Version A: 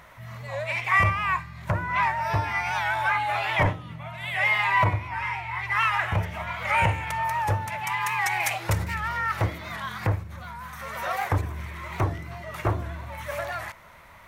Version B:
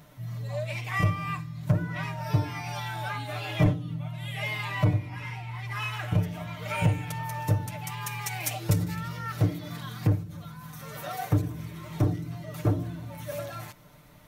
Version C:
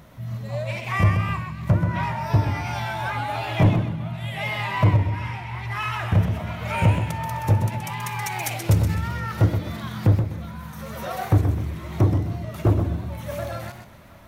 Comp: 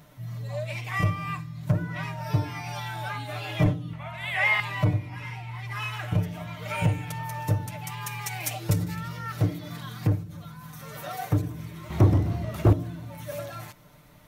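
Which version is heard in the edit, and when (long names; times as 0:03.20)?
B
0:03.93–0:04.60: punch in from A
0:11.90–0:12.73: punch in from C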